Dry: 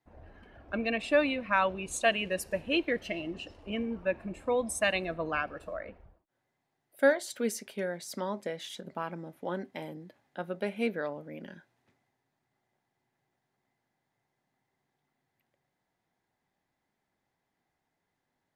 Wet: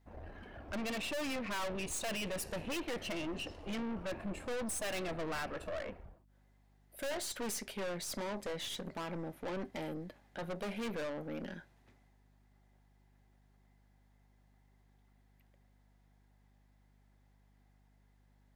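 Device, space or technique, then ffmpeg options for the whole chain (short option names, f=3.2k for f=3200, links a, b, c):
valve amplifier with mains hum: -af "aeval=exprs='(tanh(126*val(0)+0.45)-tanh(0.45))/126':c=same,aeval=exprs='val(0)+0.000251*(sin(2*PI*50*n/s)+sin(2*PI*2*50*n/s)/2+sin(2*PI*3*50*n/s)/3+sin(2*PI*4*50*n/s)/4+sin(2*PI*5*50*n/s)/5)':c=same,volume=5.5dB"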